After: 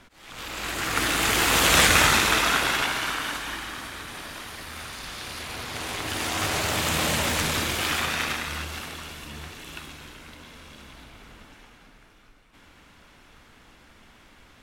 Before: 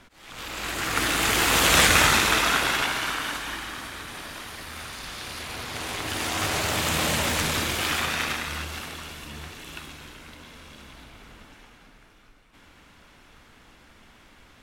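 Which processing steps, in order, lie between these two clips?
nothing audible

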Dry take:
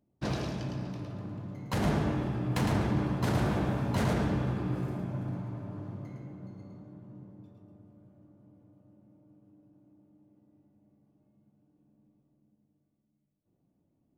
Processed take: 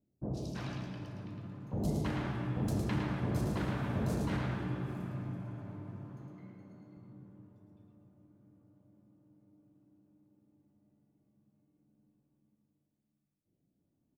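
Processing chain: 6.3–6.97 HPF 130 Hz; three bands offset in time lows, highs, mids 0.12/0.33 s, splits 730/4300 Hz; gain -4.5 dB

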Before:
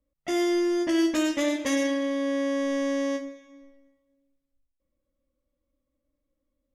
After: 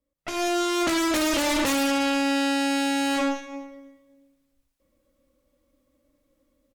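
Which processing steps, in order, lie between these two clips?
low shelf 120 Hz -7.5 dB; limiter -27 dBFS, peak gain reduction 11.5 dB; AGC gain up to 14 dB; 2.83–3.25 whine 2100 Hz -50 dBFS; added harmonics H 4 -9 dB, 5 -13 dB, 8 -7 dB, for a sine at -12.5 dBFS; outdoor echo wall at 15 m, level -17 dB; gain -7 dB

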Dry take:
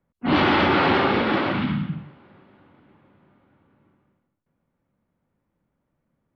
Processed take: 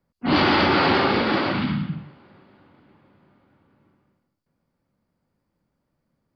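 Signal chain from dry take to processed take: bell 4700 Hz +13 dB 0.32 oct

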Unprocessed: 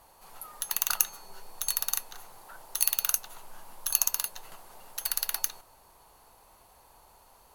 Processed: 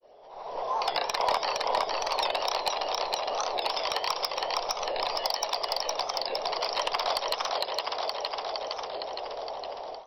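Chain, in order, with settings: grains 97 ms, grains 30/s, pitch spread up and down by 3 st; thinning echo 0.347 s, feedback 61%, high-pass 210 Hz, level -3.5 dB; varispeed -25%; brick-wall FIR low-pass 5800 Hz; low shelf 110 Hz -9 dB; compressor 2:1, threshold -44 dBFS, peak gain reduction 10 dB; band shelf 660 Hz +12 dB; AGC gain up to 15 dB; hard clip -15 dBFS, distortion -18 dB; record warp 45 rpm, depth 160 cents; gain -2.5 dB

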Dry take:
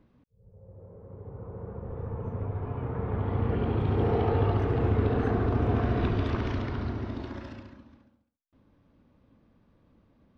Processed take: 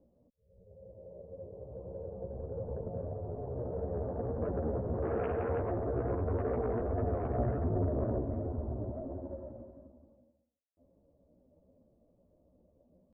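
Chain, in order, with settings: ladder low-pass 650 Hz, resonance 70%; added harmonics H 5 -11 dB, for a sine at -22 dBFS; tempo 0.79×; chorus voices 4, 1.4 Hz, delay 14 ms, depth 3 ms

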